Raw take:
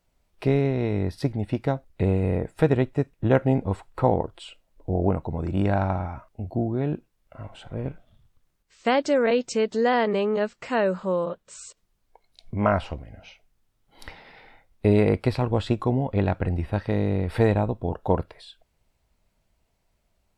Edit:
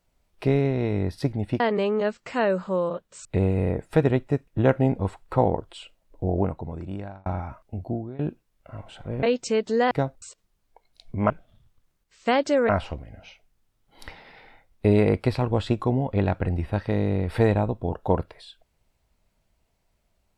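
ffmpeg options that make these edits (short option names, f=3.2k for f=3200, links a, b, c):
-filter_complex "[0:a]asplit=10[a][b][c][d][e][f][g][h][i][j];[a]atrim=end=1.602[k];[b]atrim=start=9.958:end=11.612[l];[c]atrim=start=1.908:end=5.92,asetpts=PTS-STARTPTS,afade=t=out:st=3.012:d=1[m];[d]atrim=start=5.92:end=6.85,asetpts=PTS-STARTPTS,afade=t=in:d=0.004:c=hsin,afade=t=out:st=0.53:d=0.4:silence=0.105925[n];[e]atrim=start=6.85:end=7.892,asetpts=PTS-STARTPTS,afade=t=in:d=0.004:c=hsin:silence=0.105925[o];[f]atrim=start=9.278:end=9.962[p];[g]atrim=start=1.598:end=1.912[q];[h]atrim=start=11.608:end=12.692[r];[i]atrim=start=7.888:end=9.282[s];[j]atrim=start=12.688[t];[k][l]acrossfade=d=0.004:c1=hsin:c2=hsin[u];[m][n][o]concat=n=3:v=0:a=1[v];[u][v]acrossfade=d=0.004:c1=hsin:c2=hsin[w];[w][p]acrossfade=d=0.004:c1=hsin:c2=hsin[x];[x][q]acrossfade=d=0.004:c1=hsin:c2=hsin[y];[y][r]acrossfade=d=0.004:c1=hsin:c2=hsin[z];[z][s]acrossfade=d=0.004:c1=hsin:c2=hsin[aa];[aa][t]acrossfade=d=0.004:c1=hsin:c2=hsin"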